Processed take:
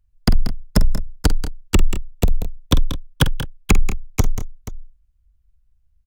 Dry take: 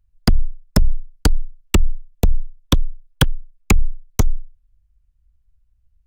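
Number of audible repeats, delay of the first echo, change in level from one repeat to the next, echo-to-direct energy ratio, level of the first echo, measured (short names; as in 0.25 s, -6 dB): 3, 47 ms, no steady repeat, -7.5 dB, -12.0 dB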